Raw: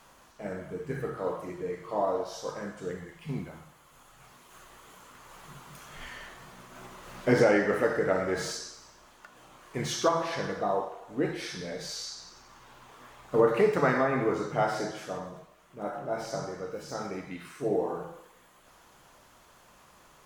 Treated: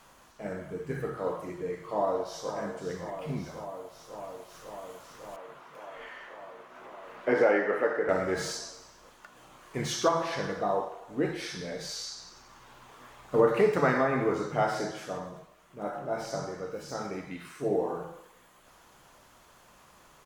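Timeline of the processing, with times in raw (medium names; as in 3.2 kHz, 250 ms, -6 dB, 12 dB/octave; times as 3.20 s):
1.79–2.55 s: echo throw 550 ms, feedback 85%, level -9.5 dB
5.36–8.09 s: three-band isolator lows -18 dB, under 280 Hz, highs -15 dB, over 2.9 kHz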